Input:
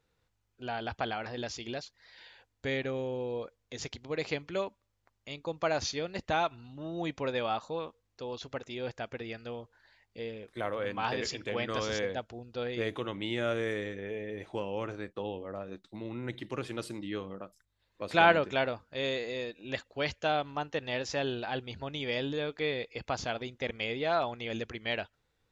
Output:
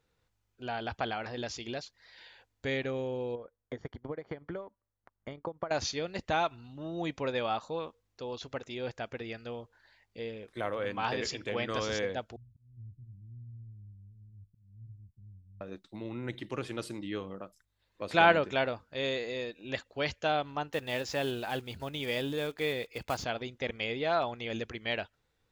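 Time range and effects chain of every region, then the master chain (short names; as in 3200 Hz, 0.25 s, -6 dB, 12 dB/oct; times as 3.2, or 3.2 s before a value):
3.35–5.71 compressor 5:1, threshold -39 dBFS + polynomial smoothing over 41 samples + transient shaper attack +9 dB, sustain -9 dB
12.36–15.61 inverse Chebyshev low-pass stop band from 530 Hz, stop band 70 dB + auto swell 0.269 s
20.73–23.24 block floating point 5-bit + notch 5800 Hz, Q 22
whole clip: dry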